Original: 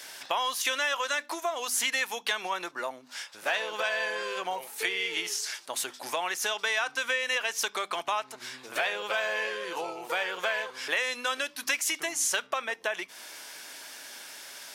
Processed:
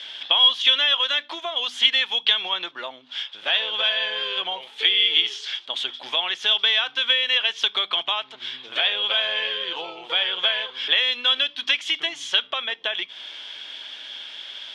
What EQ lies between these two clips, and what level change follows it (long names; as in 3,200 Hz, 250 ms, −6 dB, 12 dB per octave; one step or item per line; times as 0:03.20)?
low-pass with resonance 3,300 Hz, resonance Q 12
−1.0 dB